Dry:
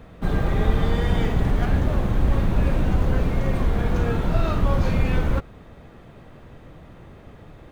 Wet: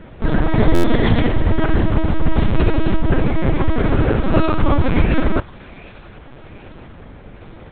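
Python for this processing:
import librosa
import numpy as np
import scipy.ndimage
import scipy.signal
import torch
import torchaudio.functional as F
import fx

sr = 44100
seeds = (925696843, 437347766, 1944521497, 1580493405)

y = fx.comb(x, sr, ms=4.7, depth=0.41, at=(0.6, 1.04))
y = fx.quant_dither(y, sr, seeds[0], bits=6, dither='none', at=(2.35, 2.96))
y = fx.echo_wet_highpass(y, sr, ms=765, feedback_pct=51, hz=1900.0, wet_db=-14.0)
y = fx.lpc_vocoder(y, sr, seeds[1], excitation='pitch_kept', order=8)
y = fx.buffer_glitch(y, sr, at_s=(0.74,), block=512, repeats=8)
y = y * librosa.db_to_amplitude(6.0)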